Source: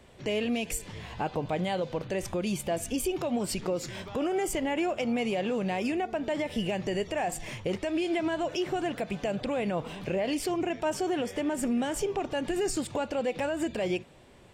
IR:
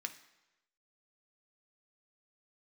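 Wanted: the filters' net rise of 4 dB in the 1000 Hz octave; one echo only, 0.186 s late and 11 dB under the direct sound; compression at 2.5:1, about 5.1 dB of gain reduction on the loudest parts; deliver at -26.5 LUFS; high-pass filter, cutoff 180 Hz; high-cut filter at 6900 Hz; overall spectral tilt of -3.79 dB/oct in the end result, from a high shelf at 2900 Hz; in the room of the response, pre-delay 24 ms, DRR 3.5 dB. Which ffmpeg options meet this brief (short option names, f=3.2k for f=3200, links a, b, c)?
-filter_complex "[0:a]highpass=180,lowpass=6.9k,equalizer=f=1k:t=o:g=6.5,highshelf=f=2.9k:g=-5,acompressor=threshold=-31dB:ratio=2.5,aecho=1:1:186:0.282,asplit=2[a][b];[1:a]atrim=start_sample=2205,adelay=24[c];[b][c]afir=irnorm=-1:irlink=0,volume=-2.5dB[d];[a][d]amix=inputs=2:normalize=0,volume=6.5dB"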